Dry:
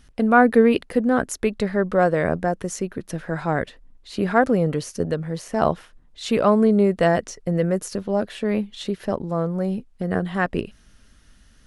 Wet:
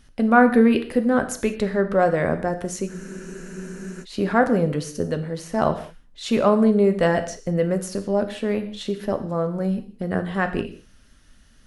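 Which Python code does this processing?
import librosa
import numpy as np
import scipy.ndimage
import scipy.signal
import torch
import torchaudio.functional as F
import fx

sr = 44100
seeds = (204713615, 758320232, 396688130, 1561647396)

y = fx.rev_gated(x, sr, seeds[0], gate_ms=220, shape='falling', drr_db=7.5)
y = fx.spec_freeze(y, sr, seeds[1], at_s=2.9, hold_s=1.13)
y = y * 10.0 ** (-1.0 / 20.0)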